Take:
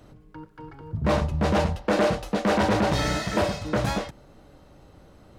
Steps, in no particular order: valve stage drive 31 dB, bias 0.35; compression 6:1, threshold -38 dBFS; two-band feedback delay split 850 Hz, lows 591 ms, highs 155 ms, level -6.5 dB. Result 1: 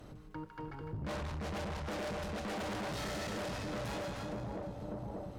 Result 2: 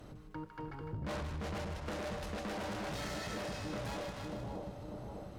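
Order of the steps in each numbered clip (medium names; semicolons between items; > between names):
two-band feedback delay > valve stage > compression; valve stage > two-band feedback delay > compression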